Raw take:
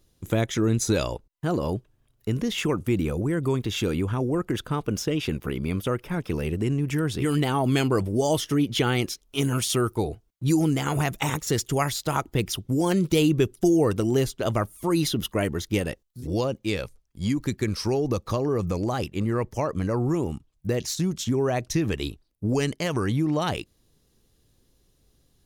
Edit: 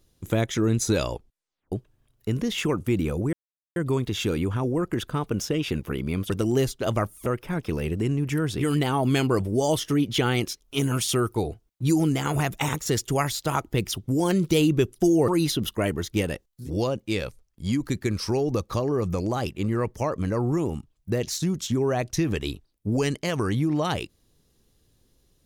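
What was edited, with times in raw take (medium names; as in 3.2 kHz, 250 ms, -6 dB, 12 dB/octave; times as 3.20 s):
1.14 s: tape stop 0.58 s
3.33 s: insert silence 0.43 s
13.89–14.85 s: move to 5.87 s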